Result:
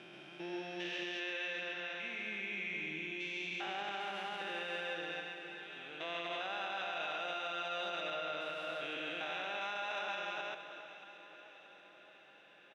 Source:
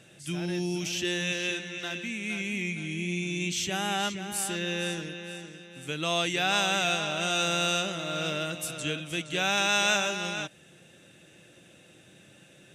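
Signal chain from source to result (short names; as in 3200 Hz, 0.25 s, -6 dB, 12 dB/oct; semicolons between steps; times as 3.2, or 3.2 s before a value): stepped spectrum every 0.4 s; HPF 600 Hz 12 dB/oct; air absorption 340 m; echo 0.134 s -3.5 dB; limiter -30.5 dBFS, peak gain reduction 12.5 dB; on a send: echo with dull and thin repeats by turns 0.314 s, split 1700 Hz, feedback 75%, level -11.5 dB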